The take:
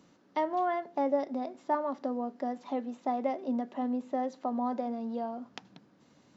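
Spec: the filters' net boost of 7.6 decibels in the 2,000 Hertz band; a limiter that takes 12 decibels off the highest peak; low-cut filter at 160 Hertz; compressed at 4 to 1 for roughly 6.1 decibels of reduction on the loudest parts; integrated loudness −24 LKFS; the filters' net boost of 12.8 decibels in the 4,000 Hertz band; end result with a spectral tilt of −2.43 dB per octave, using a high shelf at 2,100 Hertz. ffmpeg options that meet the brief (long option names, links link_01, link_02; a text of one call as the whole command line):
ffmpeg -i in.wav -af "highpass=160,equalizer=frequency=2000:width_type=o:gain=3.5,highshelf=frequency=2100:gain=6.5,equalizer=frequency=4000:width_type=o:gain=9,acompressor=threshold=-30dB:ratio=4,volume=13.5dB,alimiter=limit=-13.5dB:level=0:latency=1" out.wav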